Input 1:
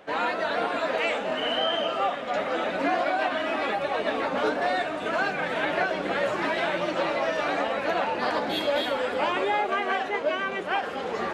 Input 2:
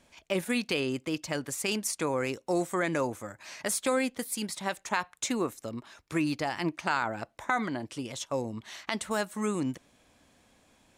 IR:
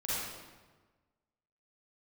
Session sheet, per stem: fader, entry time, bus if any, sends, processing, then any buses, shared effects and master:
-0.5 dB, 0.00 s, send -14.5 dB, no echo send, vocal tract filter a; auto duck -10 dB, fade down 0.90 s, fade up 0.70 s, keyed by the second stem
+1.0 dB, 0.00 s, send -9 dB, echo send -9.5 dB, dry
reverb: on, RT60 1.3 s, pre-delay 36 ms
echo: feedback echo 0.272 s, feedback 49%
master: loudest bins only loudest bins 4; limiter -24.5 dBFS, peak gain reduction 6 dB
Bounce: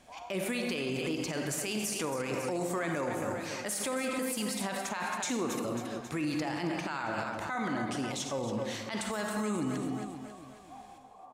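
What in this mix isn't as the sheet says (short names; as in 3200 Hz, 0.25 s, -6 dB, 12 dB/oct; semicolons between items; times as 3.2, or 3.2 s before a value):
stem 1 -0.5 dB -> -9.0 dB; master: missing loudest bins only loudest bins 4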